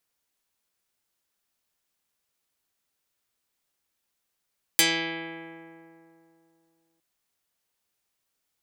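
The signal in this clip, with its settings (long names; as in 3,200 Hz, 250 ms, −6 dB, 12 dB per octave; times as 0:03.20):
Karplus-Strong string E3, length 2.21 s, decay 2.86 s, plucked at 0.12, dark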